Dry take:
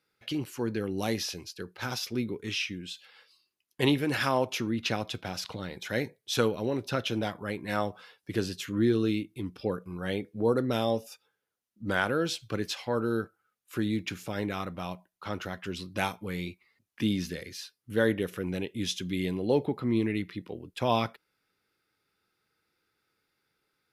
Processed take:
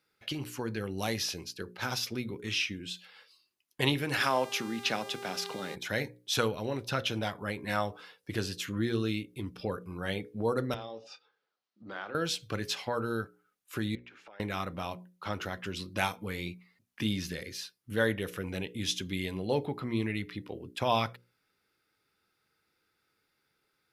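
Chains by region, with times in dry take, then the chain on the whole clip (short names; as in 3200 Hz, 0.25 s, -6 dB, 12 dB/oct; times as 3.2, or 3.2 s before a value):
4.17–5.74 HPF 160 Hz 24 dB/oct + buzz 400 Hz, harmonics 37, -44 dBFS -6 dB/oct
10.74–12.15 compressor 3:1, threshold -42 dBFS + speaker cabinet 200–5200 Hz, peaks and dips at 230 Hz -5 dB, 770 Hz +3 dB, 1200 Hz +5 dB, 4300 Hz +4 dB + doubler 27 ms -11.5 dB
13.95–14.4 BPF 600–2200 Hz + compressor 10:1, threshold -49 dBFS
whole clip: notches 60/120/180/240/300/360/420/480/540 Hz; dynamic EQ 310 Hz, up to -7 dB, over -39 dBFS, Q 0.89; gain +1 dB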